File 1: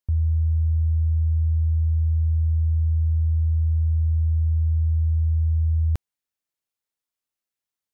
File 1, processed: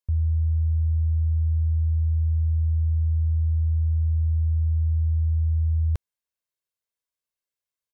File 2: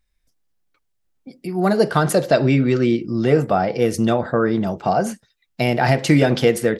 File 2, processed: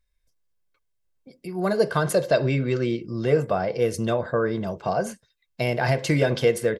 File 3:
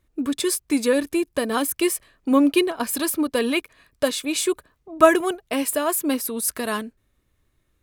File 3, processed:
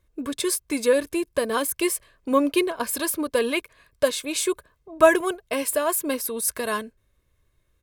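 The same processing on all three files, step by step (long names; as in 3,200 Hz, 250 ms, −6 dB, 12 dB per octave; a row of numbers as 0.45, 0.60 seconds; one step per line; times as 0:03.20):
comb filter 1.9 ms, depth 43%
loudness normalisation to −24 LKFS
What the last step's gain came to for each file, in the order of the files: −3.5, −6.0, −1.5 decibels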